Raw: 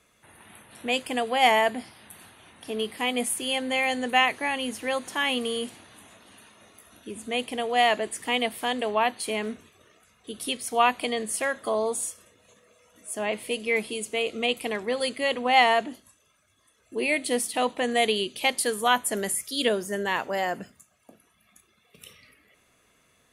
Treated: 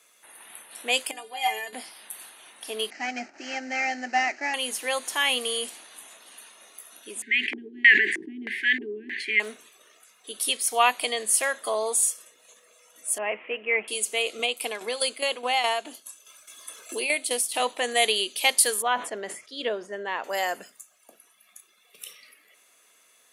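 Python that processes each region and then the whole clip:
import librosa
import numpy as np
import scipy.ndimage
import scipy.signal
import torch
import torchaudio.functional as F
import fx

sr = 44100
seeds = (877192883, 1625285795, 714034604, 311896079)

y = fx.chain(x, sr, fx.low_shelf(hz=220.0, db=12.0),
    fx.stiff_resonator(f0_hz=88.0, decay_s=0.45, stiffness=0.03), at=(1.11, 1.73))
y = fx.chain(y, sr, fx.cvsd(bps=32000),
    fx.low_shelf(hz=310.0, db=6.5),
    fx.fixed_phaser(hz=710.0, stages=8), at=(2.9, 4.54))
y = fx.chain(y, sr, fx.brickwall_bandstop(low_hz=430.0, high_hz=1500.0),
    fx.filter_lfo_lowpass(shape='square', hz=1.6, low_hz=340.0, high_hz=2000.0, q=5.3),
    fx.sustainer(db_per_s=59.0), at=(7.22, 9.4))
y = fx.chain(y, sr, fx.cvsd(bps=64000),
    fx.steep_lowpass(hz=2800.0, slope=72),
    fx.notch(hz=1500.0, q=19.0), at=(13.18, 13.88))
y = fx.chain(y, sr, fx.notch(hz=1900.0, q=8.7),
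    fx.tremolo_shape(shape='saw_down', hz=4.8, depth_pct=65),
    fx.band_squash(depth_pct=70), at=(14.39, 17.6))
y = fx.chain(y, sr, fx.spacing_loss(db_at_10k=33),
    fx.sustainer(db_per_s=140.0), at=(18.82, 20.24))
y = scipy.signal.sosfilt(scipy.signal.butter(2, 440.0, 'highpass', fs=sr, output='sos'), y)
y = fx.high_shelf(y, sr, hz=3800.0, db=10.0)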